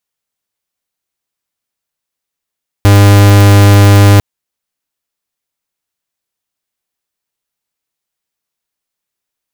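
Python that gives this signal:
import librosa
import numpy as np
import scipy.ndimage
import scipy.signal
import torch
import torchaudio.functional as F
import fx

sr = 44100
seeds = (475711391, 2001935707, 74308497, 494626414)

y = fx.pulse(sr, length_s=1.35, hz=101.0, level_db=-4.0, duty_pct=45)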